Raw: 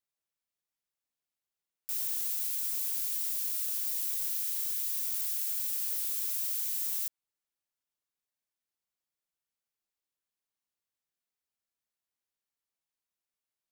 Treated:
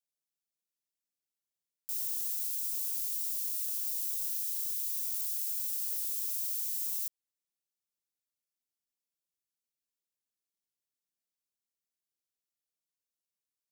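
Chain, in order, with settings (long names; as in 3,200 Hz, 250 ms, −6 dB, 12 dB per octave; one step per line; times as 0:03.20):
drawn EQ curve 110 Hz 0 dB, 180 Hz +6 dB, 580 Hz +2 dB, 870 Hz −8 dB, 5,600 Hz +7 dB
level −8.5 dB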